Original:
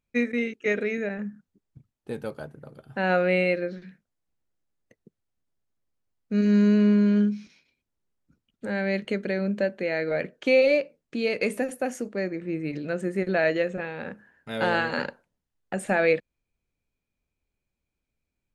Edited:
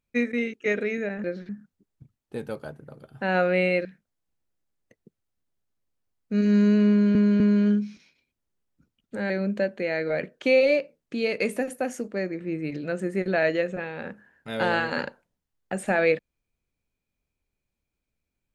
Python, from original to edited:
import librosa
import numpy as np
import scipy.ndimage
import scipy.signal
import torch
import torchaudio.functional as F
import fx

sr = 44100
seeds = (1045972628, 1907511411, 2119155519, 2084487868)

y = fx.edit(x, sr, fx.move(start_s=3.6, length_s=0.25, to_s=1.24),
    fx.repeat(start_s=6.9, length_s=0.25, count=3),
    fx.cut(start_s=8.8, length_s=0.51), tone=tone)